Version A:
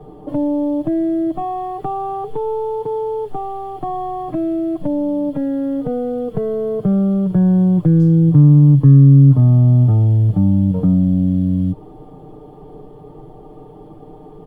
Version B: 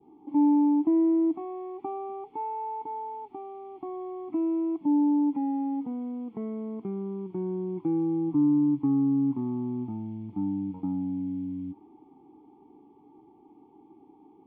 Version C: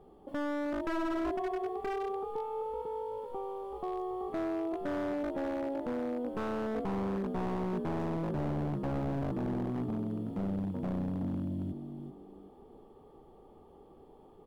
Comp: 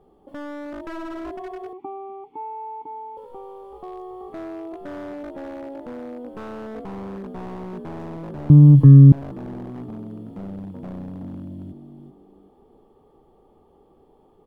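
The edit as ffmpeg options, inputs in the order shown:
ffmpeg -i take0.wav -i take1.wav -i take2.wav -filter_complex "[2:a]asplit=3[link_01][link_02][link_03];[link_01]atrim=end=1.732[link_04];[1:a]atrim=start=1.728:end=3.172[link_05];[link_02]atrim=start=3.168:end=8.502[link_06];[0:a]atrim=start=8.498:end=9.122[link_07];[link_03]atrim=start=9.118[link_08];[link_04][link_05]acrossfade=duration=0.004:curve1=hsin:curve2=hsin[link_09];[link_09][link_06]acrossfade=duration=0.004:curve1=hsin:curve2=hsin[link_10];[link_10][link_07]acrossfade=duration=0.004:curve1=hsin:curve2=hsin[link_11];[link_11][link_08]acrossfade=duration=0.004:curve1=hsin:curve2=hsin" out.wav

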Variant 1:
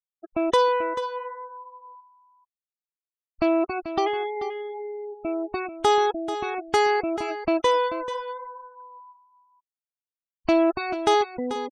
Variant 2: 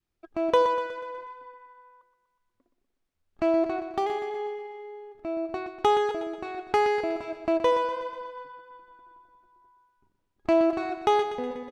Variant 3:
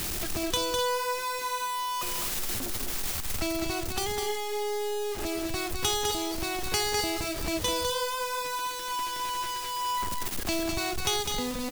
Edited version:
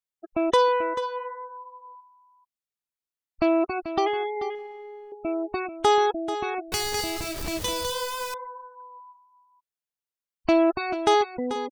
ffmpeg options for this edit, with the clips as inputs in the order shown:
ffmpeg -i take0.wav -i take1.wav -i take2.wav -filter_complex "[0:a]asplit=3[link_01][link_02][link_03];[link_01]atrim=end=4.552[link_04];[1:a]atrim=start=4.548:end=5.122[link_05];[link_02]atrim=start=5.118:end=6.722[link_06];[2:a]atrim=start=6.718:end=8.342[link_07];[link_03]atrim=start=8.338[link_08];[link_04][link_05]acrossfade=duration=0.004:curve1=hsin:curve2=hsin[link_09];[link_09][link_06]acrossfade=duration=0.004:curve1=hsin:curve2=hsin[link_10];[link_10][link_07]acrossfade=duration=0.004:curve1=hsin:curve2=hsin[link_11];[link_11][link_08]acrossfade=duration=0.004:curve1=hsin:curve2=hsin" out.wav

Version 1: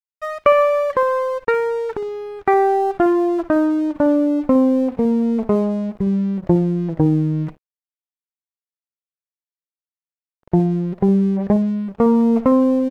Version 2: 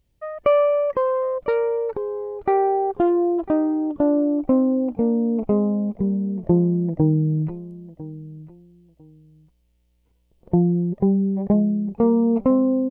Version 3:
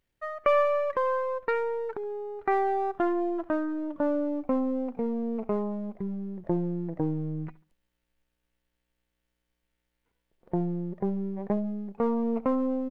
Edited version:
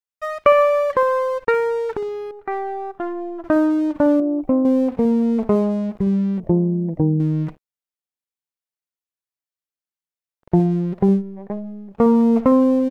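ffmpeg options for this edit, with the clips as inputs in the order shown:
ffmpeg -i take0.wav -i take1.wav -i take2.wav -filter_complex "[2:a]asplit=2[link_01][link_02];[1:a]asplit=2[link_03][link_04];[0:a]asplit=5[link_05][link_06][link_07][link_08][link_09];[link_05]atrim=end=2.312[link_10];[link_01]atrim=start=2.308:end=3.442[link_11];[link_06]atrim=start=3.438:end=4.202[link_12];[link_03]atrim=start=4.198:end=4.652[link_13];[link_07]atrim=start=4.648:end=6.402[link_14];[link_04]atrim=start=6.398:end=7.202[link_15];[link_08]atrim=start=7.198:end=11.23[link_16];[link_02]atrim=start=11.13:end=12[link_17];[link_09]atrim=start=11.9[link_18];[link_10][link_11]acrossfade=duration=0.004:curve1=hsin:curve2=hsin[link_19];[link_19][link_12]acrossfade=duration=0.004:curve1=hsin:curve2=hsin[link_20];[link_20][link_13]acrossfade=duration=0.004:curve1=hsin:curve2=hsin[link_21];[link_21][link_14]acrossfade=duration=0.004:curve1=hsin:curve2=hsin[link_22];[link_22][link_15]acrossfade=duration=0.004:curve1=hsin:curve2=hsin[link_23];[link_23][link_16]acrossfade=duration=0.004:curve1=hsin:curve2=hsin[link_24];[link_24][link_17]acrossfade=duration=0.1:curve1=tri:curve2=tri[link_25];[link_25][link_18]acrossfade=duration=0.1:curve1=tri:curve2=tri" out.wav

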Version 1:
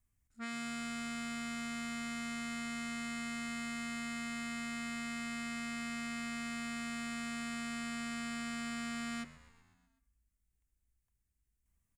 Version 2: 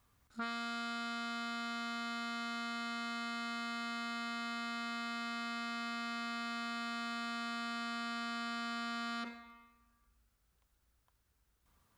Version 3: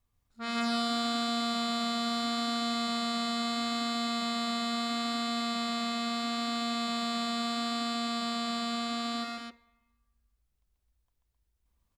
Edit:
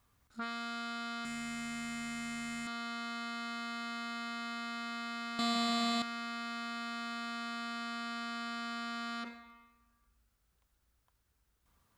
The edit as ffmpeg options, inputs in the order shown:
ffmpeg -i take0.wav -i take1.wav -i take2.wav -filter_complex "[1:a]asplit=3[link_01][link_02][link_03];[link_01]atrim=end=1.252[link_04];[0:a]atrim=start=1.248:end=2.672[link_05];[link_02]atrim=start=2.668:end=5.392[link_06];[2:a]atrim=start=5.388:end=6.022[link_07];[link_03]atrim=start=6.018[link_08];[link_04][link_05]acrossfade=duration=0.004:curve1=hsin:curve2=hsin[link_09];[link_09][link_06]acrossfade=duration=0.004:curve1=hsin:curve2=hsin[link_10];[link_10][link_07]acrossfade=duration=0.004:curve1=hsin:curve2=hsin[link_11];[link_11][link_08]acrossfade=duration=0.004:curve1=hsin:curve2=hsin" out.wav

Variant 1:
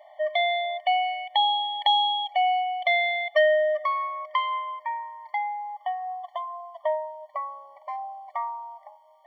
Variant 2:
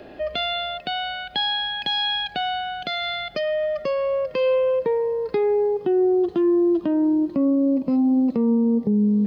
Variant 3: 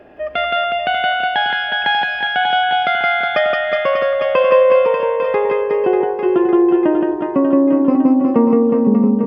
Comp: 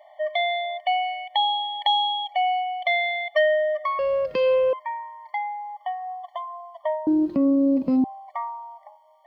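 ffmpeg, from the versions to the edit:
ffmpeg -i take0.wav -i take1.wav -filter_complex "[1:a]asplit=2[link_01][link_02];[0:a]asplit=3[link_03][link_04][link_05];[link_03]atrim=end=3.992[link_06];[link_01]atrim=start=3.988:end=4.732[link_07];[link_04]atrim=start=4.728:end=7.072[link_08];[link_02]atrim=start=7.068:end=8.042[link_09];[link_05]atrim=start=8.038[link_10];[link_06][link_07]acrossfade=duration=0.004:curve1=hsin:curve2=hsin[link_11];[link_11][link_08]acrossfade=duration=0.004:curve1=hsin:curve2=hsin[link_12];[link_12][link_09]acrossfade=duration=0.004:curve1=hsin:curve2=hsin[link_13];[link_13][link_10]acrossfade=duration=0.004:curve1=hsin:curve2=hsin" out.wav

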